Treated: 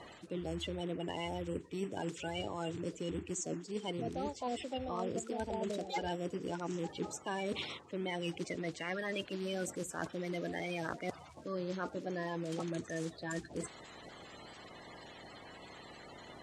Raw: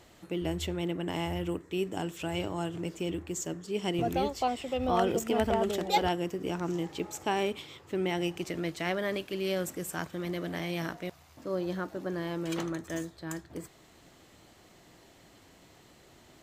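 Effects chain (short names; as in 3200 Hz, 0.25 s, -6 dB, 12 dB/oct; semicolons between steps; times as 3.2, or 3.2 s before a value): bin magnitudes rounded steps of 30 dB; wow and flutter 28 cents; reverse; compressor 6:1, threshold -42 dBFS, peak gain reduction 19 dB; reverse; LPF 8900 Hz 24 dB/oct; low shelf 60 Hz -10.5 dB; gain +6.5 dB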